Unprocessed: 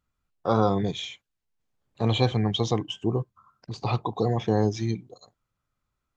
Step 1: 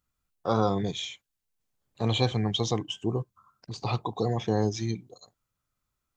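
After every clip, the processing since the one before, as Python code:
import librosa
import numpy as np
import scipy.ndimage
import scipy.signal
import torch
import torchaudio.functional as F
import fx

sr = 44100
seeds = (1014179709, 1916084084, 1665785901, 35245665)

y = fx.high_shelf(x, sr, hz=5300.0, db=10.0)
y = F.gain(torch.from_numpy(y), -3.0).numpy()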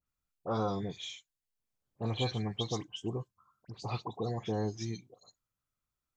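y = fx.dispersion(x, sr, late='highs', ms=69.0, hz=2300.0)
y = F.gain(torch.from_numpy(y), -7.5).numpy()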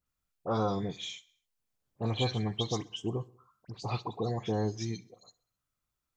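y = fx.echo_feedback(x, sr, ms=65, feedback_pct=58, wet_db=-23.5)
y = F.gain(torch.from_numpy(y), 2.5).numpy()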